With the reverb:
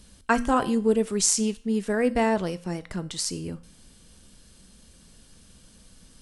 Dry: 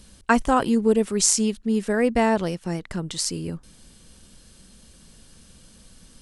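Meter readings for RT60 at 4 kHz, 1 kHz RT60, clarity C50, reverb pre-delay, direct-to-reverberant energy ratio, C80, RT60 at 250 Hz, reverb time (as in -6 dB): 0.45 s, 0.45 s, 18.0 dB, 4 ms, 11.5 dB, 22.5 dB, 0.45 s, 0.45 s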